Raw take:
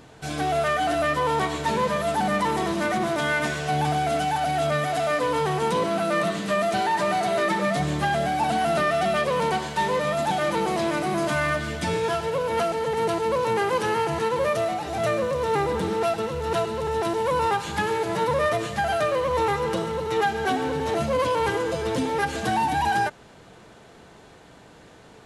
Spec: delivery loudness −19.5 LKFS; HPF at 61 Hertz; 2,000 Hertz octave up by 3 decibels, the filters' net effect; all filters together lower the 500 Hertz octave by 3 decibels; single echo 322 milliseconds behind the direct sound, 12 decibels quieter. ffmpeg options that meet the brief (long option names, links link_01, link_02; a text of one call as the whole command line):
ffmpeg -i in.wav -af "highpass=61,equalizer=frequency=500:width_type=o:gain=-4,equalizer=frequency=2000:width_type=o:gain=4,aecho=1:1:322:0.251,volume=5dB" out.wav